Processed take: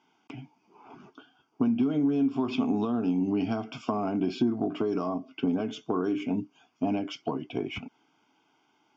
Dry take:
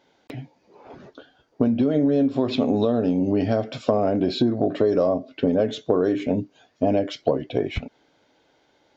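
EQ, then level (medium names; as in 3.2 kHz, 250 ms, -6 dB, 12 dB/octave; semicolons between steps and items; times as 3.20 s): high-pass 200 Hz 12 dB/octave; distance through air 78 m; static phaser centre 2.7 kHz, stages 8; 0.0 dB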